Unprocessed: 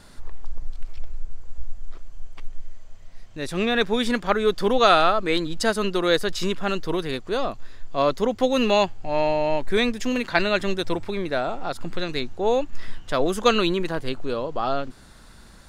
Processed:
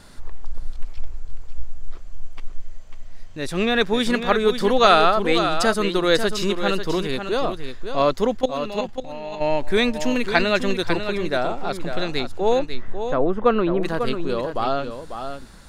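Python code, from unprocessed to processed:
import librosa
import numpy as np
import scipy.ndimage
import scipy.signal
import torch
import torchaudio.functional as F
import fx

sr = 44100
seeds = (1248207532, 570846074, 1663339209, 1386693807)

y = fx.level_steps(x, sr, step_db=17, at=(8.36, 9.4), fade=0.02)
y = fx.lowpass(y, sr, hz=1300.0, slope=12, at=(12.59, 13.83))
y = y + 10.0 ** (-8.5 / 20.0) * np.pad(y, (int(545 * sr / 1000.0), 0))[:len(y)]
y = F.gain(torch.from_numpy(y), 2.0).numpy()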